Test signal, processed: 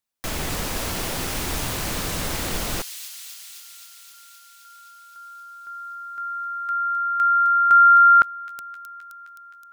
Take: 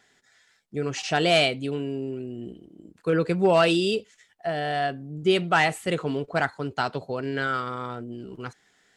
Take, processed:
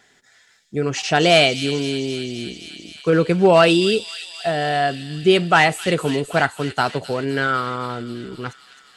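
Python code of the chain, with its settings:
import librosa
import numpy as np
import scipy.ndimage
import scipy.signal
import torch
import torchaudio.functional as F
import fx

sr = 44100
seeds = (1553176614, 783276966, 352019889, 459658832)

y = fx.echo_wet_highpass(x, sr, ms=261, feedback_pct=75, hz=3700.0, wet_db=-6.0)
y = y * librosa.db_to_amplitude(6.5)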